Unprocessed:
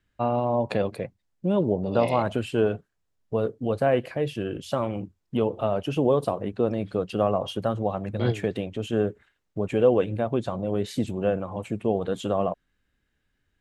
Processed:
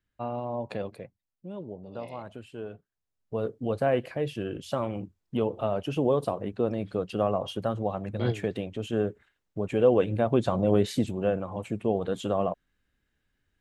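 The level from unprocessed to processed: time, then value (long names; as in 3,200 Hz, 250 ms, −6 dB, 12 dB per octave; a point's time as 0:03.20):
0:00.87 −8.5 dB
0:01.46 −16 dB
0:02.64 −16 dB
0:03.53 −3 dB
0:09.68 −3 dB
0:10.72 +5 dB
0:11.13 −2 dB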